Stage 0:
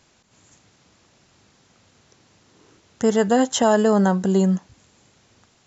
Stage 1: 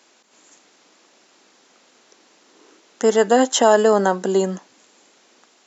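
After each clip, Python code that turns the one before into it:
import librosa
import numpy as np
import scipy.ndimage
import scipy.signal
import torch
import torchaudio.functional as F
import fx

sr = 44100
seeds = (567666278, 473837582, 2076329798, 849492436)

y = scipy.signal.sosfilt(scipy.signal.butter(4, 270.0, 'highpass', fs=sr, output='sos'), x)
y = y * 10.0 ** (4.0 / 20.0)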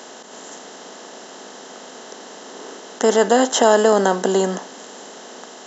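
y = fx.bin_compress(x, sr, power=0.6)
y = y * 10.0 ** (-1.5 / 20.0)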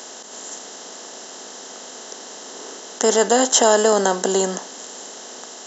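y = fx.bass_treble(x, sr, bass_db=-3, treble_db=9)
y = y * 10.0 ** (-1.5 / 20.0)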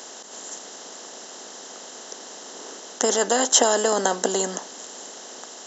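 y = fx.hpss(x, sr, part='harmonic', gain_db=-7)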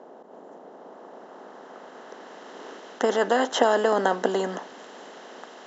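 y = fx.filter_sweep_lowpass(x, sr, from_hz=740.0, to_hz=2300.0, start_s=0.52, end_s=2.64, q=0.9)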